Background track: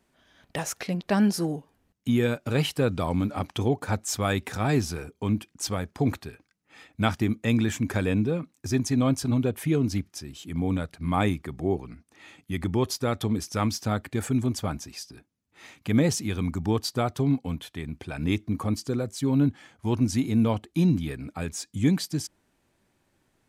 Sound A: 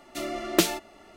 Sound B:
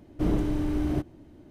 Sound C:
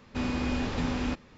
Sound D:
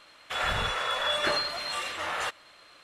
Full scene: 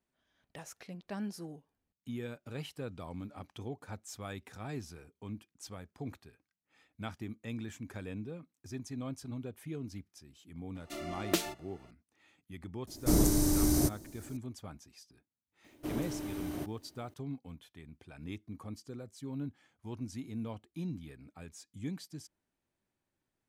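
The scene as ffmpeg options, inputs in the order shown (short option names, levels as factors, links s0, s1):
-filter_complex "[2:a]asplit=2[s0][s1];[0:a]volume=0.141[s2];[s0]aexciter=amount=10.1:drive=7.7:freq=4600[s3];[s1]aemphasis=mode=production:type=bsi[s4];[1:a]atrim=end=1.16,asetpts=PTS-STARTPTS,volume=0.355,afade=t=in:d=0.004:c=hsin,afade=t=out:st=1.156:d=0.004:c=hsin,adelay=10750[s5];[s3]atrim=end=1.5,asetpts=PTS-STARTPTS,volume=0.891,afade=t=in:d=0.004:c=hsin,afade=t=out:st=1.496:d=0.004:c=hsin,adelay=12870[s6];[s4]atrim=end=1.5,asetpts=PTS-STARTPTS,volume=0.447,afade=t=in:d=0.004:c=hsin,afade=t=out:st=1.496:d=0.004:c=hsin,adelay=15640[s7];[s2][s5][s6][s7]amix=inputs=4:normalize=0"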